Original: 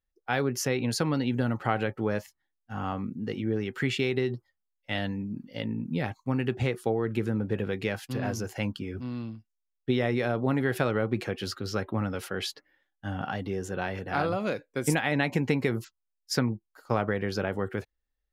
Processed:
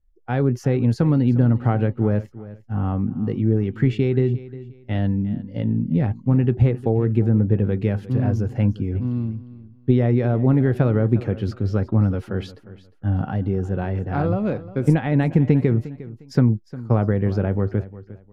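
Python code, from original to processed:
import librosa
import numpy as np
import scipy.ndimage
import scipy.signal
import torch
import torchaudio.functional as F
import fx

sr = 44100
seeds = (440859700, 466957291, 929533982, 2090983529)

y = fx.tilt_eq(x, sr, slope=-4.5)
y = fx.echo_feedback(y, sr, ms=355, feedback_pct=26, wet_db=-17)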